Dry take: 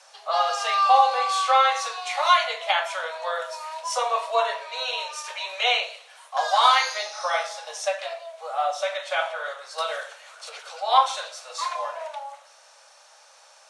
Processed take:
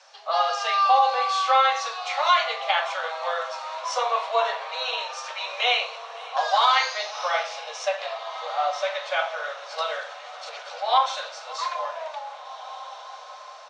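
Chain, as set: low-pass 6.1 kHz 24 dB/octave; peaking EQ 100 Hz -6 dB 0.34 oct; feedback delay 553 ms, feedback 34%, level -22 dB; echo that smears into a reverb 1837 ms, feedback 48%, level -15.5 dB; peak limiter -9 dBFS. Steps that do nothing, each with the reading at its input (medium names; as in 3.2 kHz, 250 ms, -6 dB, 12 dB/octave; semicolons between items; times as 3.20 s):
peaking EQ 100 Hz: input has nothing below 400 Hz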